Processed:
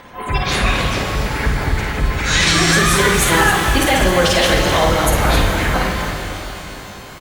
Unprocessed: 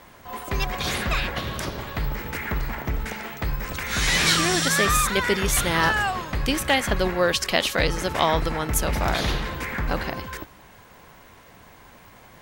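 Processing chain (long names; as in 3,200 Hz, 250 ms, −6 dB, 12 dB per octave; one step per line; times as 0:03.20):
downsampling to 32,000 Hz
in parallel at −11.5 dB: soft clipping −17 dBFS, distortion −14 dB
on the sum: time stretch by phase vocoder 0.58×
gate on every frequency bin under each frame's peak −25 dB strong
on a send: loudspeakers that aren't time-aligned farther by 18 metres −5 dB, 91 metres −10 dB
on the sum: boost into a limiter +13 dB
reverb with rising layers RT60 3.7 s, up +12 semitones, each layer −8 dB, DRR 4 dB
level −4.5 dB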